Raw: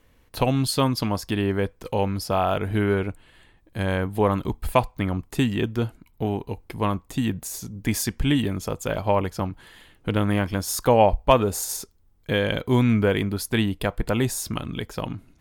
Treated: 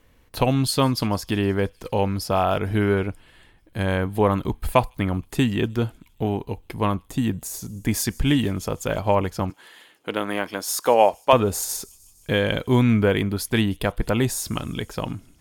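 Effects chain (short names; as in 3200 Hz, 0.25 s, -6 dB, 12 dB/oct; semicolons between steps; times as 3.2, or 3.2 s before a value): 7.1–7.98 bell 2900 Hz -3.5 dB 2 oct; 9.5–11.33 HPF 360 Hz 12 dB/oct; thin delay 0.154 s, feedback 70%, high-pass 4900 Hz, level -22 dB; gain +1.5 dB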